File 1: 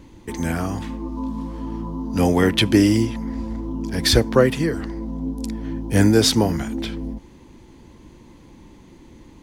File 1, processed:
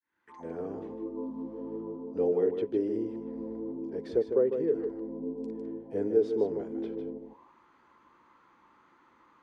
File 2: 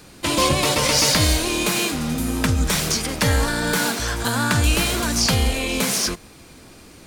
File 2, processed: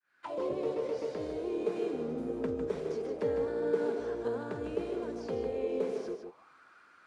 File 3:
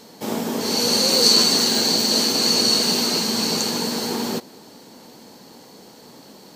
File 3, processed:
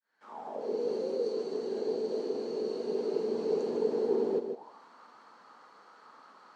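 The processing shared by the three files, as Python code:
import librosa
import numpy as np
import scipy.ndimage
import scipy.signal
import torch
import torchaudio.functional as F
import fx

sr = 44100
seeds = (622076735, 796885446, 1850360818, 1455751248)

p1 = fx.fade_in_head(x, sr, length_s=0.99)
p2 = scipy.signal.sosfilt(scipy.signal.butter(4, 11000.0, 'lowpass', fs=sr, output='sos'), p1)
p3 = fx.rider(p2, sr, range_db=5, speed_s=0.5)
p4 = fx.auto_wah(p3, sr, base_hz=430.0, top_hz=1600.0, q=6.8, full_db=-21.5, direction='down')
p5 = p4 + fx.echo_single(p4, sr, ms=153, db=-7.5, dry=0)
y = F.gain(torch.from_numpy(p5), 1.5).numpy()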